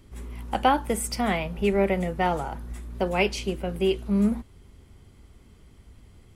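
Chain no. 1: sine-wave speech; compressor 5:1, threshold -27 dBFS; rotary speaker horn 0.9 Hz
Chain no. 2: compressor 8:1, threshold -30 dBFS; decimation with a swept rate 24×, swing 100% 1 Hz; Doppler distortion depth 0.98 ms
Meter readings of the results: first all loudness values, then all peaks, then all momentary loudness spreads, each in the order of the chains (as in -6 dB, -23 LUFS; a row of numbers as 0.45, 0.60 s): -34.0, -36.0 LUFS; -20.0, -19.0 dBFS; 10, 19 LU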